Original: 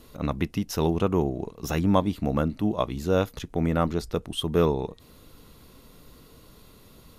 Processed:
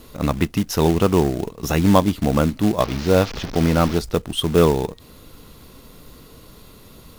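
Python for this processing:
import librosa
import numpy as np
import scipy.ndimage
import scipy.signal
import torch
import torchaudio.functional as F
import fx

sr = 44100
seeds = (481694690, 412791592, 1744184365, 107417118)

y = fx.delta_mod(x, sr, bps=32000, step_db=-31.5, at=(2.8, 3.99))
y = fx.quant_float(y, sr, bits=2)
y = F.gain(torch.from_numpy(y), 7.0).numpy()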